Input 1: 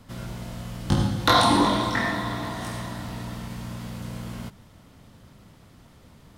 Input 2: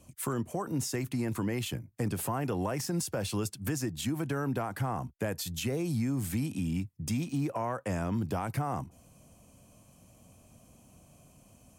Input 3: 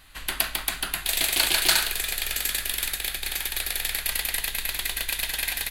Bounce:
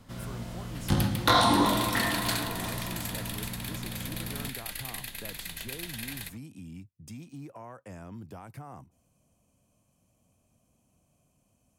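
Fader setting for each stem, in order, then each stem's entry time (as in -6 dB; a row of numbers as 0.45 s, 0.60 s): -3.5 dB, -12.0 dB, -11.5 dB; 0.00 s, 0.00 s, 0.60 s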